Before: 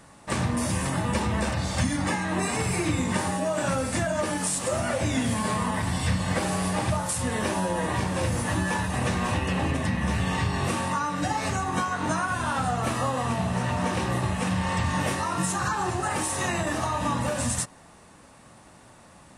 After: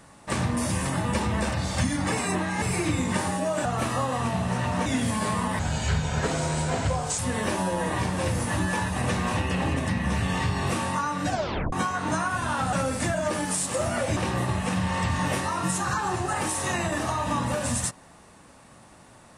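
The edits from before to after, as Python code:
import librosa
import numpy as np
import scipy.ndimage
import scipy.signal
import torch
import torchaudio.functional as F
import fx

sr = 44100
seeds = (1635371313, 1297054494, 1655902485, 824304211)

y = fx.edit(x, sr, fx.reverse_span(start_s=2.12, length_s=0.5),
    fx.swap(start_s=3.65, length_s=1.44, other_s=12.7, other_length_s=1.21),
    fx.speed_span(start_s=5.82, length_s=1.34, speed=0.84),
    fx.tape_stop(start_s=11.26, length_s=0.44), tone=tone)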